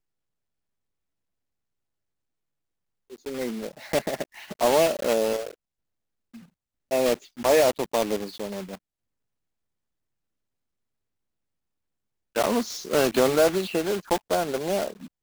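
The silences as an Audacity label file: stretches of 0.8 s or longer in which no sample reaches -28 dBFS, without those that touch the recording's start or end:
5.490000	6.910000	silence
8.740000	12.360000	silence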